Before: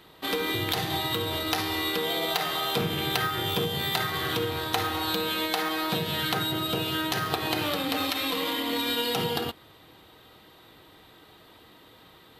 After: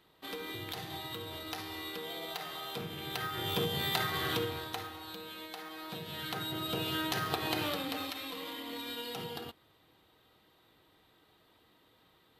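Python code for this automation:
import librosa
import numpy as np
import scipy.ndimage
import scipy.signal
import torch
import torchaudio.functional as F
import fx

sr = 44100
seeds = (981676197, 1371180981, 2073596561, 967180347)

y = fx.gain(x, sr, db=fx.line((3.01, -13.0), (3.62, -4.5), (4.37, -4.5), (4.98, -17.0), (5.68, -17.0), (6.87, -5.5), (7.64, -5.5), (8.25, -13.0)))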